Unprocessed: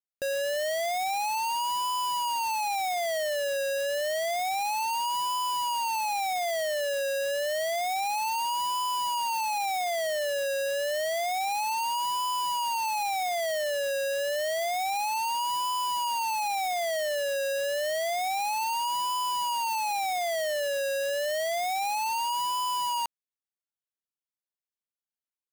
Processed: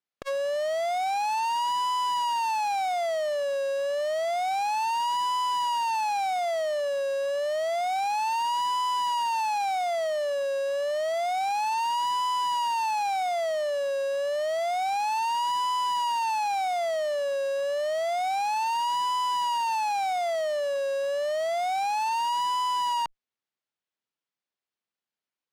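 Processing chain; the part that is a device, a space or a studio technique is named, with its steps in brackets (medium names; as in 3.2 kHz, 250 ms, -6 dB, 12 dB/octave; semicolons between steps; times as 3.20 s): valve radio (band-pass 120–4400 Hz; valve stage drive 32 dB, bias 0.4; transformer saturation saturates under 590 Hz); trim +8 dB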